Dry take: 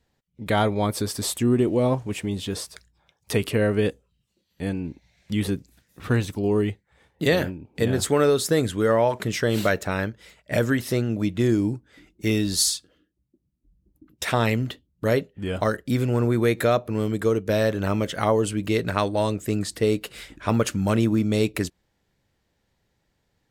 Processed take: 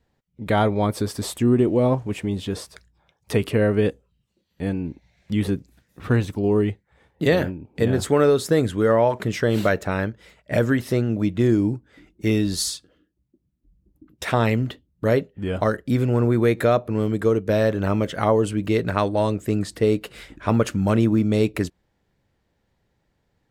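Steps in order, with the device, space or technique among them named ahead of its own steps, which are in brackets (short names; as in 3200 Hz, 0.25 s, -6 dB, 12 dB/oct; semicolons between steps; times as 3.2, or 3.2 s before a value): behind a face mask (high shelf 2700 Hz -8 dB); gain +2.5 dB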